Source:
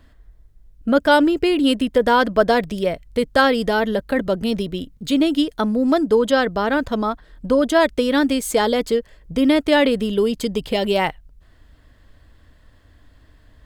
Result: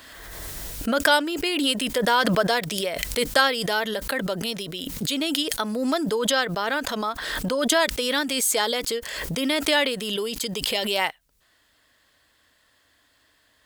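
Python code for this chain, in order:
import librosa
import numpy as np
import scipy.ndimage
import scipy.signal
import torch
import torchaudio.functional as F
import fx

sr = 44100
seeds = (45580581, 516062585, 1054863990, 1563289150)

y = fx.highpass(x, sr, hz=960.0, slope=6)
y = fx.high_shelf(y, sr, hz=3500.0, db=8.5)
y = fx.pre_swell(y, sr, db_per_s=29.0)
y = y * 10.0 ** (-2.5 / 20.0)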